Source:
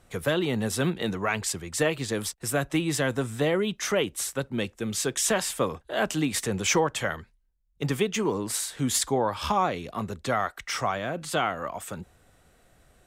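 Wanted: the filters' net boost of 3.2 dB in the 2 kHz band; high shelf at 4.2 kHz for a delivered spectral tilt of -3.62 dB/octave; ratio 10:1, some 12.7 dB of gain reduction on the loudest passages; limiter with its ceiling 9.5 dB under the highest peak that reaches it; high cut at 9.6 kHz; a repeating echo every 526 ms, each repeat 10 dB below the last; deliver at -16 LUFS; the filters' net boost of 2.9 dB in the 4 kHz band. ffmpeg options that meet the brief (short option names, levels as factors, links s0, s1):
-af "lowpass=9600,equalizer=f=2000:t=o:g=4,equalizer=f=4000:t=o:g=6.5,highshelf=f=4200:g=-7,acompressor=threshold=0.0251:ratio=10,alimiter=level_in=1.68:limit=0.0631:level=0:latency=1,volume=0.596,aecho=1:1:526|1052|1578|2104:0.316|0.101|0.0324|0.0104,volume=13.3"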